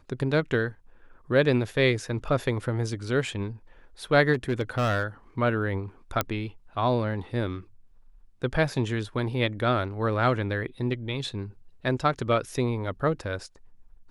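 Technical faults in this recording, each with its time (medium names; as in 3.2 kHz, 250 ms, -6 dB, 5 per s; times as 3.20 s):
4.33–5.03 s: clipped -20.5 dBFS
6.21 s: pop -8 dBFS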